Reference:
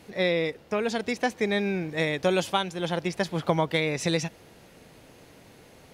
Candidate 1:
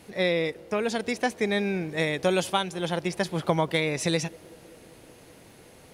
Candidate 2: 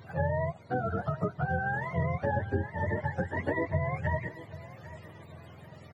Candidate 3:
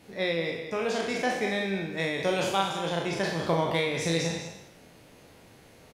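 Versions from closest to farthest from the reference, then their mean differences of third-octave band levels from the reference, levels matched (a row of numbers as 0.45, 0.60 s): 1, 3, 2; 1.0, 4.5, 11.5 dB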